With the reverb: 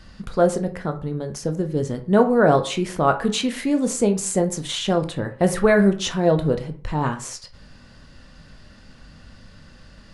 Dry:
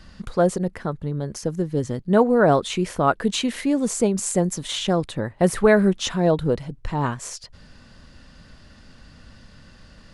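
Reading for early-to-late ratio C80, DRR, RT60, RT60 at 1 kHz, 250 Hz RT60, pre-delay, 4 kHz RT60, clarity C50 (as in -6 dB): 18.0 dB, 6.5 dB, 0.45 s, 0.45 s, 0.45 s, 14 ms, 0.25 s, 13.5 dB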